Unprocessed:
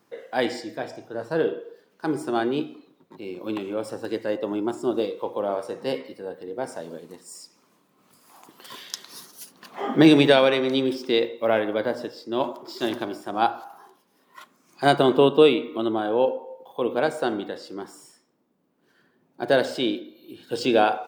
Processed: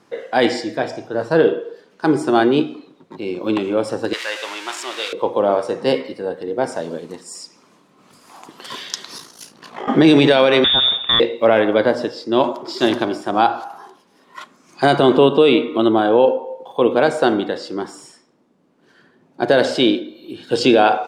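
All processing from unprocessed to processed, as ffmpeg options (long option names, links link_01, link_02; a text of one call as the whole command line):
ffmpeg -i in.wav -filter_complex "[0:a]asettb=1/sr,asplit=3[link_01][link_02][link_03];[link_01]atrim=end=4.134[link_04];[link_02]atrim=start=4.13:end=5.13,asetpts=PTS-STARTPTS,afade=type=in:duration=0.004:curve=qsin,afade=type=out:start_time=0.996:duration=0.004:curve=qsin,aeval=exprs='val(0)+0.5*0.0282*sgn(val(0))':channel_layout=same,highpass=1300,equalizer=frequency=2700:width=0.99:gain=4.5[link_05];[link_03]atrim=start=5.126[link_06];[link_04][link_05]acrossfade=duration=0.004:curve1=hsin:curve2=qsin[link_07];[link_07][link_06]acrossfade=duration=0.004:curve1=qsin:curve2=hsin,asettb=1/sr,asplit=3[link_08][link_09][link_10];[link_08]atrim=end=9.174[link_11];[link_09]atrim=start=9.17:end=9.88,asetpts=PTS-STARTPTS,afade=type=in:duration=0.004:curve=qsin,afade=type=out:start_time=0.706:duration=0.004:curve=qsin,acompressor=threshold=-32dB:ratio=6:attack=3.2:release=140:knee=1:detection=peak,aeval=exprs='val(0)*sin(2*PI*28*n/s)':channel_layout=same,asplit=2[link_12][link_13];[link_13]adelay=29,volume=-11dB[link_14];[link_12][link_14]amix=inputs=2:normalize=0,atrim=end_sample=31311[link_15];[link_10]atrim=start=9.876[link_16];[link_11][link_15]acrossfade=duration=0.004:curve1=hsin:curve2=qsin[link_17];[link_17][link_16]acrossfade=duration=0.004:curve1=qsin:curve2=hsin,asettb=1/sr,asplit=3[link_18][link_19][link_20];[link_18]atrim=end=10.644[link_21];[link_19]atrim=start=10.64:end=11.2,asetpts=PTS-STARTPTS,afade=type=in:duration=0.004:curve=qsin,afade=type=out:start_time=0.556:duration=0.004:curve=qsin,highshelf=frequency=2300:gain=7.5,lowpass=frequency=3300:width_type=q:width=0.5098,lowpass=frequency=3300:width_type=q:width=0.6013,lowpass=frequency=3300:width_type=q:width=0.9,lowpass=frequency=3300:width_type=q:width=2.563,afreqshift=-3900,acompressor=threshold=-22dB:ratio=3:attack=3.2:release=140:knee=1:detection=peak[link_22];[link_20]atrim=start=11.196[link_23];[link_21][link_22]acrossfade=duration=0.004:curve1=hsin:curve2=qsin[link_24];[link_24][link_23]acrossfade=duration=0.004:curve1=qsin:curve2=hsin,lowpass=8000,alimiter=level_in=12dB:limit=-1dB:release=50:level=0:latency=1,volume=-2dB" out.wav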